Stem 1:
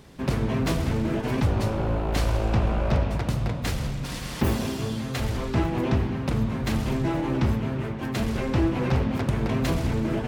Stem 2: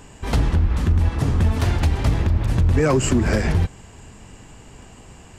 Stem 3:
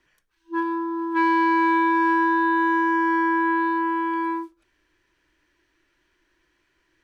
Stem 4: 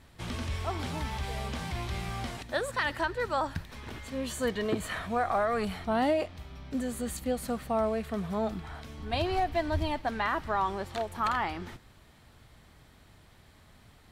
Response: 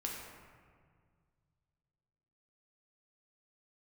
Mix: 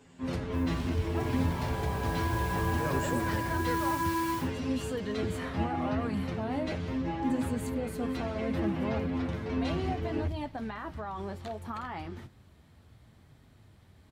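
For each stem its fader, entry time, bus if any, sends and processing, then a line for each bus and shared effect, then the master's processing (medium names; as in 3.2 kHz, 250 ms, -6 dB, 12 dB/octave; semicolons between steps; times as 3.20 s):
+1.0 dB, 0.00 s, send -3.5 dB, low-pass 4.9 kHz 12 dB/octave; inharmonic resonator 85 Hz, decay 0.33 s, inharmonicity 0.002
-13.5 dB, 0.00 s, no send, none
1.70 s -19 dB -> 2.39 s -10 dB -> 3.51 s -10 dB -> 3.88 s -2 dB, 0.00 s, no send, modulation noise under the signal 14 dB
-3.0 dB, 0.50 s, no send, peak limiter -24.5 dBFS, peak gain reduction 6.5 dB; bass shelf 400 Hz +10 dB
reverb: on, RT60 1.9 s, pre-delay 5 ms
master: high-pass 56 Hz; flange 0.67 Hz, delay 7.1 ms, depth 5.2 ms, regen -51%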